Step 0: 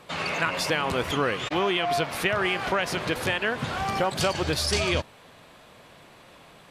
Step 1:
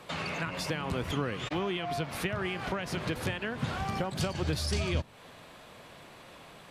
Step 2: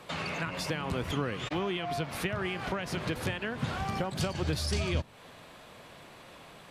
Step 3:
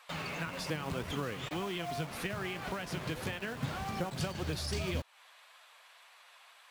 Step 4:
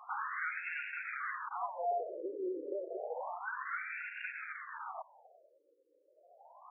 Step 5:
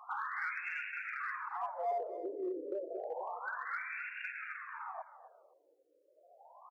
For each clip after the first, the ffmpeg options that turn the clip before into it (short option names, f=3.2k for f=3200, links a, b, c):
-filter_complex "[0:a]acrossover=split=260[a][b];[b]acompressor=threshold=-36dB:ratio=3[c];[a][c]amix=inputs=2:normalize=0"
-af anull
-filter_complex "[0:a]flanger=delay=3.6:depth=4.4:regen=64:speed=1.8:shape=triangular,acrossover=split=800[a][b];[a]acrusher=bits=7:mix=0:aa=0.000001[c];[c][b]amix=inputs=2:normalize=0"
-af "asoftclip=type=tanh:threshold=-35.5dB,acrusher=bits=2:mode=log:mix=0:aa=0.000001,afftfilt=real='re*between(b*sr/1024,390*pow(2000/390,0.5+0.5*sin(2*PI*0.3*pts/sr))/1.41,390*pow(2000/390,0.5+0.5*sin(2*PI*0.3*pts/sr))*1.41)':imag='im*between(b*sr/1024,390*pow(2000/390,0.5+0.5*sin(2*PI*0.3*pts/sr))/1.41,390*pow(2000/390,0.5+0.5*sin(2*PI*0.3*pts/sr))*1.41)':win_size=1024:overlap=0.75,volume=10dB"
-filter_complex "[0:a]asplit=2[a][b];[b]volume=33.5dB,asoftclip=hard,volume=-33.5dB,volume=-10dB[c];[a][c]amix=inputs=2:normalize=0,aecho=1:1:258|516:0.188|0.0358,volume=-2.5dB"